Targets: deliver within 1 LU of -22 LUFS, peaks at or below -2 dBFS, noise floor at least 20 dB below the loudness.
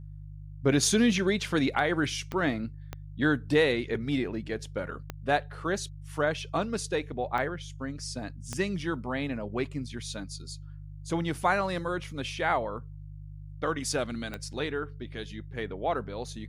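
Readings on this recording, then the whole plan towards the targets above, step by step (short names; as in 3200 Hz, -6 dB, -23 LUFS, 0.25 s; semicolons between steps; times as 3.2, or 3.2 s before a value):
clicks 6; hum 50 Hz; harmonics up to 150 Hz; hum level -40 dBFS; loudness -30.0 LUFS; peak -13.0 dBFS; loudness target -22.0 LUFS
-> de-click; de-hum 50 Hz, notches 3; gain +8 dB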